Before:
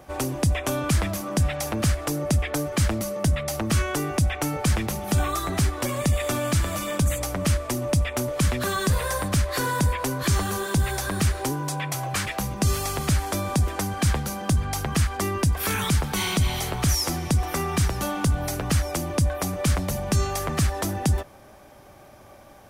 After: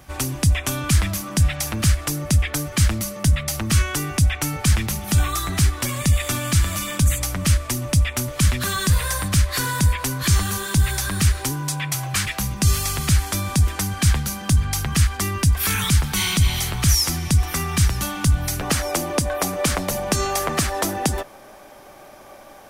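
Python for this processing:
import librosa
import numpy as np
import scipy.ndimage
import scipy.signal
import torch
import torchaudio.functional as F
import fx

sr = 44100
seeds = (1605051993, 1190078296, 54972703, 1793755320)

y = fx.peak_eq(x, sr, hz=fx.steps((0.0, 520.0), (18.61, 85.0)), db=-12.5, octaves=2.2)
y = y * 10.0 ** (6.5 / 20.0)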